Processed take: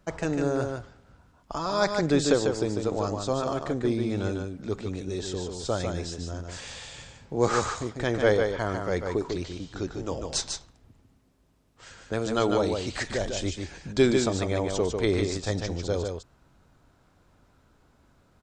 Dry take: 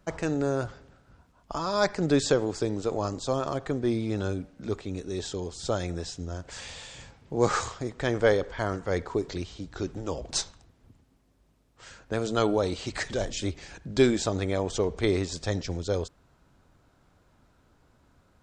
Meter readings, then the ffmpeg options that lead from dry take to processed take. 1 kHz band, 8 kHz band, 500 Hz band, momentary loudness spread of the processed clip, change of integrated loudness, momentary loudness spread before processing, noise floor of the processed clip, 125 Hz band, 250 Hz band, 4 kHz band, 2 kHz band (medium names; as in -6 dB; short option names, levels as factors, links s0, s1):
+1.5 dB, +1.0 dB, +1.0 dB, 12 LU, +1.0 dB, 13 LU, -63 dBFS, +1.0 dB, +1.0 dB, +1.0 dB, +1.0 dB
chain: -af "aecho=1:1:148:0.562"